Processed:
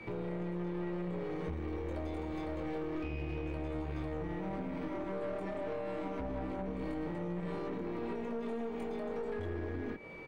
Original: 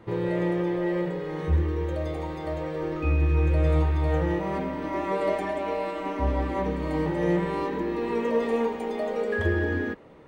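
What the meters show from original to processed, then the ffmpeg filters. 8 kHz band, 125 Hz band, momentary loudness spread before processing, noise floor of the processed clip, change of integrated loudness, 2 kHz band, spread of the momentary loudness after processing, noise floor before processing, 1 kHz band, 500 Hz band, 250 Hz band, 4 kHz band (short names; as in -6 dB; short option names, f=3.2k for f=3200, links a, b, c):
n/a, -14.5 dB, 8 LU, -40 dBFS, -12.0 dB, -14.0 dB, 1 LU, -35 dBFS, -12.5 dB, -11.5 dB, -9.5 dB, -12.0 dB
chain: -filter_complex "[0:a]asplit=2[a][b];[b]adelay=22,volume=-3.5dB[c];[a][c]amix=inputs=2:normalize=0,aeval=exprs='val(0)+0.00398*sin(2*PI*2300*n/s)':c=same,acrossover=split=130|520[d][e][f];[d]acompressor=threshold=-37dB:ratio=4[g];[e]acompressor=threshold=-30dB:ratio=4[h];[f]acompressor=threshold=-42dB:ratio=4[i];[g][h][i]amix=inputs=3:normalize=0,alimiter=level_in=3.5dB:limit=-24dB:level=0:latency=1:release=145,volume=-3.5dB,aeval=exprs='(tanh(50.1*val(0)+0.5)-tanh(0.5))/50.1':c=same,volume=1dB"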